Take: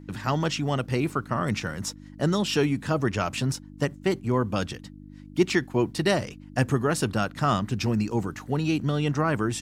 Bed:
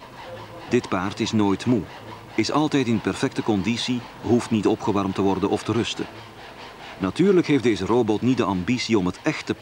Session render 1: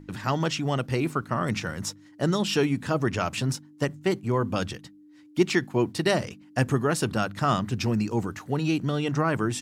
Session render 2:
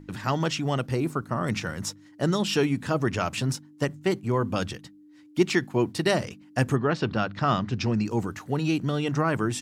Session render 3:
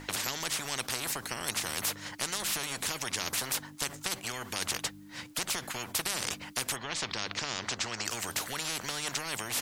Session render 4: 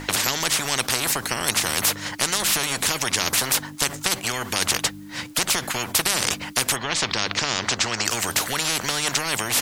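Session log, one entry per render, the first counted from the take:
hum removal 50 Hz, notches 5
0:00.87–0:01.44: dynamic equaliser 2,600 Hz, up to −7 dB, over −45 dBFS, Q 0.8; 0:06.75–0:08.04: low-pass filter 4,100 Hz → 6,700 Hz 24 dB per octave
downward compressor, threshold −25 dBFS, peak gain reduction 10 dB; every bin compressed towards the loudest bin 10 to 1
level +11 dB

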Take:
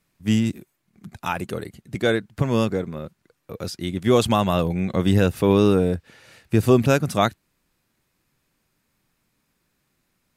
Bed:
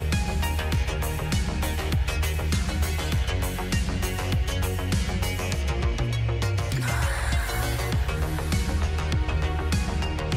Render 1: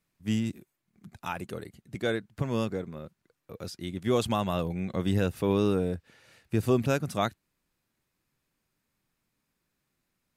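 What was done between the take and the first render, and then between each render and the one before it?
level −8.5 dB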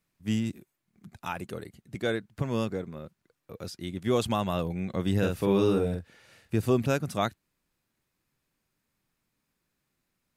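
0:05.18–0:06.56: double-tracking delay 46 ms −4 dB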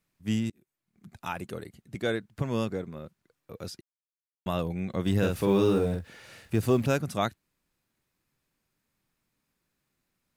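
0:00.50–0:01.15: fade in, from −23 dB
0:03.81–0:04.46: silence
0:05.06–0:07.02: mu-law and A-law mismatch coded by mu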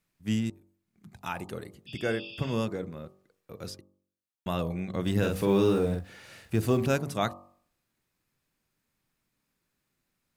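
0:01.90–0:02.53: healed spectral selection 2,300–5,300 Hz after
hum removal 47.62 Hz, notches 26

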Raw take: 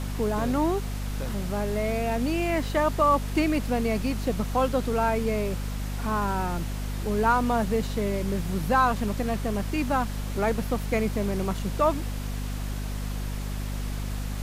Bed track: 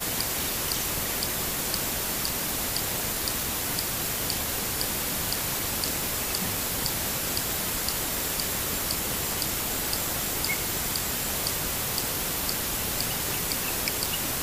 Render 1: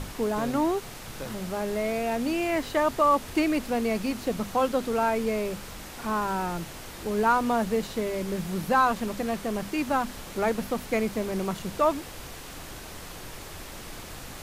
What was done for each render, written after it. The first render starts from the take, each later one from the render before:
mains-hum notches 50/100/150/200/250 Hz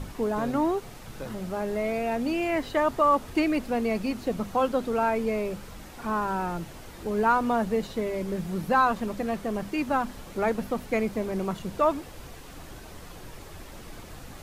broadband denoise 7 dB, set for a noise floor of −41 dBFS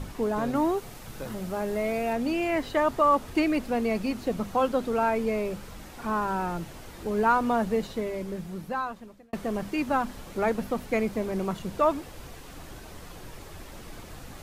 0:00.55–0:02.13: high-shelf EQ 8,900 Hz +6 dB
0:07.77–0:09.33: fade out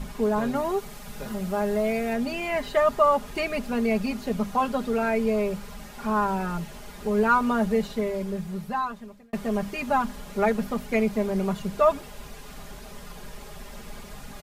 parametric band 340 Hz −7 dB 0.25 octaves
comb filter 4.9 ms, depth 79%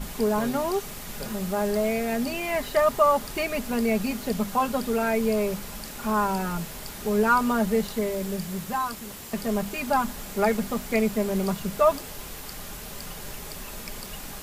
mix in bed track −12 dB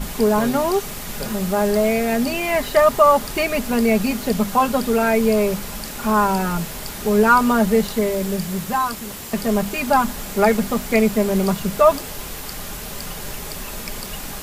level +7 dB
brickwall limiter −3 dBFS, peak gain reduction 1 dB

